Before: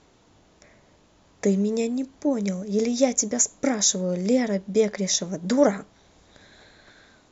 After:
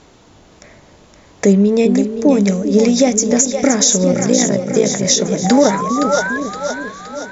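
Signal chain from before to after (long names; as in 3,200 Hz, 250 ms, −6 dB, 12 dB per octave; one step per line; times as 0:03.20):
0:01.52–0:01.95: low-pass filter 3,200 Hz → 5,200 Hz 12 dB per octave
0:04.12–0:05.05: amplitude modulation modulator 57 Hz, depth 80%
0:05.44–0:06.38: sound drawn into the spectrogram rise 740–1,700 Hz −33 dBFS
echo with a time of its own for lows and highs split 450 Hz, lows 397 ms, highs 518 ms, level −8 dB
boost into a limiter +12.5 dB
every ending faded ahead of time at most 170 dB per second
level −1 dB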